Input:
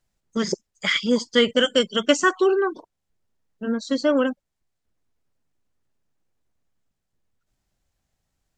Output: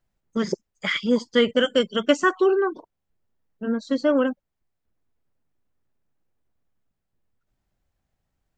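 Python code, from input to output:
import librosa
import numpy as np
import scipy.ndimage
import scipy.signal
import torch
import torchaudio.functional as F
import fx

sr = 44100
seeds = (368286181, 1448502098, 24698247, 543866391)

y = fx.peak_eq(x, sr, hz=7500.0, db=-9.0, octaves=2.3)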